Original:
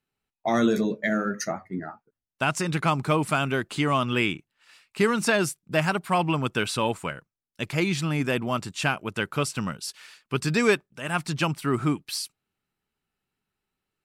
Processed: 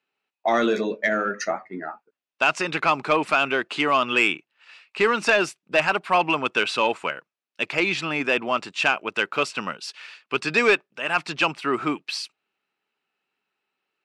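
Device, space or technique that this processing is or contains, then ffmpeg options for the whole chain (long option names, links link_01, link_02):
intercom: -af "highpass=390,lowpass=4300,equalizer=frequency=2600:width_type=o:width=0.23:gain=6,asoftclip=type=tanh:threshold=-13.5dB,volume=5.5dB"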